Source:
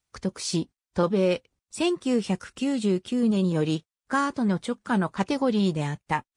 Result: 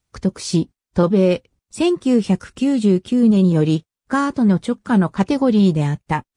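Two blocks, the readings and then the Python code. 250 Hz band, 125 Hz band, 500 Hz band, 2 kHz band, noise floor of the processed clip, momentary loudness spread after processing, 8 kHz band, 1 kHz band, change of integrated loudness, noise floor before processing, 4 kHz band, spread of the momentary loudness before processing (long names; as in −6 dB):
+9.5 dB, +10.0 dB, +7.0 dB, +3.5 dB, below −85 dBFS, 9 LU, can't be measured, +4.5 dB, +8.5 dB, below −85 dBFS, +3.0 dB, 8 LU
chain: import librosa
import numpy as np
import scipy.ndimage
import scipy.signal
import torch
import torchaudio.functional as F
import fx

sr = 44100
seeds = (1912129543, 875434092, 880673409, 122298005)

y = fx.low_shelf(x, sr, hz=410.0, db=8.5)
y = y * 10.0 ** (3.0 / 20.0)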